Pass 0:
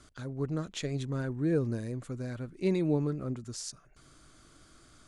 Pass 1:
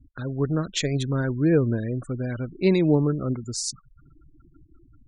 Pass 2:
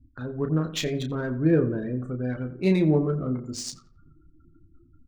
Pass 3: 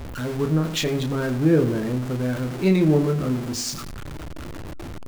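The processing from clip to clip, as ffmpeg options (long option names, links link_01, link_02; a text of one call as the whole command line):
ffmpeg -i in.wav -af "afftfilt=real='re*gte(hypot(re,im),0.00501)':imag='im*gte(hypot(re,im),0.00501)':win_size=1024:overlap=0.75,adynamicequalizer=threshold=0.00398:dfrequency=1700:dqfactor=0.7:tfrequency=1700:tqfactor=0.7:attack=5:release=100:ratio=0.375:range=2:mode=boostabove:tftype=highshelf,volume=8.5dB" out.wav
ffmpeg -i in.wav -filter_complex "[0:a]asplit=2[link_01][link_02];[link_02]aecho=0:1:12|32:0.398|0.501[link_03];[link_01][link_03]amix=inputs=2:normalize=0,adynamicsmooth=sensitivity=3.5:basefreq=3500,asplit=2[link_04][link_05];[link_05]adelay=87,lowpass=frequency=1600:poles=1,volume=-12dB,asplit=2[link_06][link_07];[link_07]adelay=87,lowpass=frequency=1600:poles=1,volume=0.5,asplit=2[link_08][link_09];[link_09]adelay=87,lowpass=frequency=1600:poles=1,volume=0.5,asplit=2[link_10][link_11];[link_11]adelay=87,lowpass=frequency=1600:poles=1,volume=0.5,asplit=2[link_12][link_13];[link_13]adelay=87,lowpass=frequency=1600:poles=1,volume=0.5[link_14];[link_06][link_08][link_10][link_12][link_14]amix=inputs=5:normalize=0[link_15];[link_04][link_15]amix=inputs=2:normalize=0,volume=-3dB" out.wav
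ffmpeg -i in.wav -af "aeval=exprs='val(0)+0.5*0.0299*sgn(val(0))':channel_layout=same,volume=2dB" out.wav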